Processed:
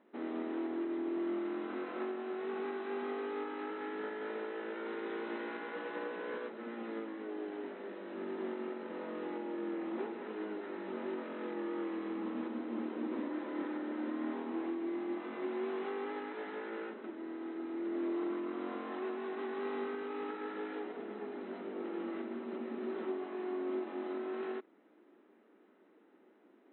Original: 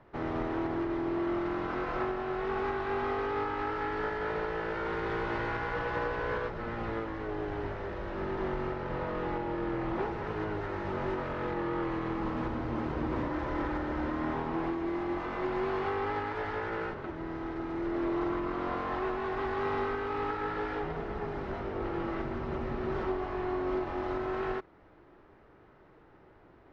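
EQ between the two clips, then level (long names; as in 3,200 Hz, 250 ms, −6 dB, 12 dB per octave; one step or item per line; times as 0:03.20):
linear-phase brick-wall band-pass 200–4,100 Hz
high-frequency loss of the air 150 metres
parametric band 1,000 Hz −13 dB 2.9 octaves
+2.5 dB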